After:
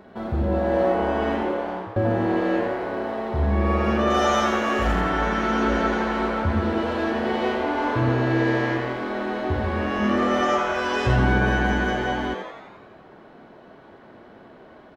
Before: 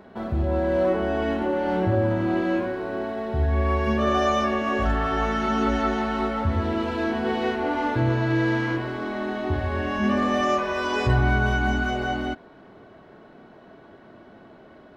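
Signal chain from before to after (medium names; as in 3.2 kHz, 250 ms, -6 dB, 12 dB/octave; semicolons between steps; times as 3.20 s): 1.38–1.96 s: fade out; 4.10–5.01 s: treble shelf 5.8 kHz +11 dB; frequency-shifting echo 86 ms, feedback 60%, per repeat +130 Hz, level -7 dB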